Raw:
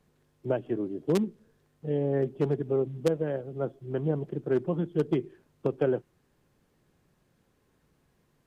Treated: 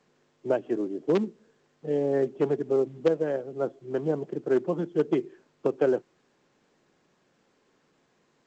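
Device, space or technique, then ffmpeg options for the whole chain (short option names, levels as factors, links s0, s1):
telephone: -af "highpass=250,lowpass=3100,volume=1.5" -ar 16000 -c:a pcm_alaw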